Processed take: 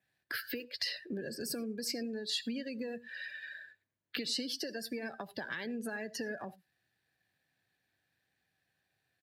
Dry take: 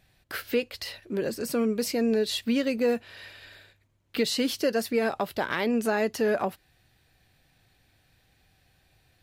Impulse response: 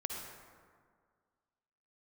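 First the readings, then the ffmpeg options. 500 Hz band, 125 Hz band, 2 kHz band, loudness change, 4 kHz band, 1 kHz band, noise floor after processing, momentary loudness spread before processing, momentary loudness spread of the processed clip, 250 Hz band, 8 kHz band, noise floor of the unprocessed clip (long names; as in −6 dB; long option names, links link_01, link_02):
−16.0 dB, −11.0 dB, −7.0 dB, −11.0 dB, −4.0 dB, −16.0 dB, −83 dBFS, 11 LU, 8 LU, −12.0 dB, −6.5 dB, −67 dBFS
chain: -filter_complex "[0:a]aeval=exprs='if(lt(val(0),0),0.708*val(0),val(0))':channel_layout=same,acompressor=threshold=-32dB:ratio=6,equalizer=frequency=1700:width_type=o:width=0.25:gain=10,acrossover=split=180|3000[link_01][link_02][link_03];[link_02]acompressor=threshold=-45dB:ratio=3[link_04];[link_01][link_04][link_03]amix=inputs=3:normalize=0,asplit=2[link_05][link_06];[1:a]atrim=start_sample=2205,atrim=end_sample=3969,asetrate=38367,aresample=44100[link_07];[link_06][link_07]afir=irnorm=-1:irlink=0,volume=-2dB[link_08];[link_05][link_08]amix=inputs=2:normalize=0,adynamicequalizer=threshold=0.00282:dfrequency=4800:dqfactor=5.3:tfrequency=4800:tqfactor=5.3:attack=5:release=100:ratio=0.375:range=2:mode=boostabove:tftype=bell,highpass=140,aecho=1:1:110:0.0891,afftdn=noise_reduction=18:noise_floor=-42,volume=-1.5dB"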